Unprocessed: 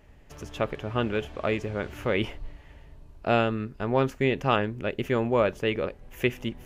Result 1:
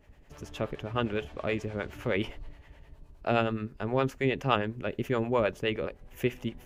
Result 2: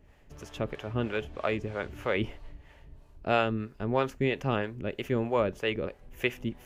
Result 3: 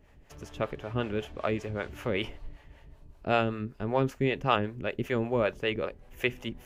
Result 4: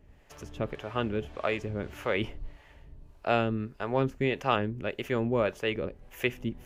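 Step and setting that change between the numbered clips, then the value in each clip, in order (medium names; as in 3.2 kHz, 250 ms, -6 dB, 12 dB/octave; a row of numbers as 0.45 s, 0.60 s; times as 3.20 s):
harmonic tremolo, rate: 9.6 Hz, 3.1 Hz, 5.2 Hz, 1.7 Hz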